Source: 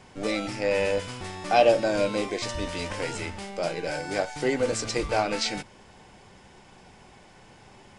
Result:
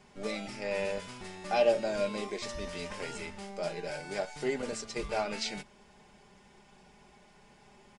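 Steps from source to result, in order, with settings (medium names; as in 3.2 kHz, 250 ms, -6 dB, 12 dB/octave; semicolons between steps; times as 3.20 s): 4.62–5.02 s: expander -26 dBFS; comb 4.9 ms, depth 59%; trim -8.5 dB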